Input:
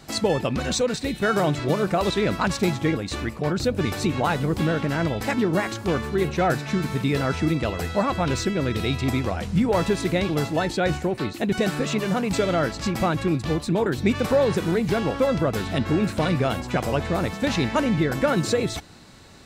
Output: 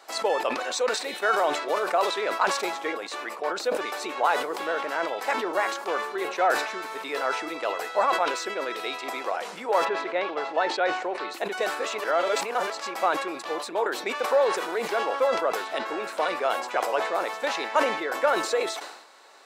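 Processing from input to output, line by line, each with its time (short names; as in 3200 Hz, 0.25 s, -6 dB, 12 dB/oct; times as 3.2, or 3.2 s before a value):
9.84–11.29 LPF 2400 Hz -> 5800 Hz
12.04–12.7 reverse
whole clip: HPF 420 Hz 24 dB/oct; bell 1000 Hz +7.5 dB 1.7 oct; sustainer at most 66 dB/s; gain -5 dB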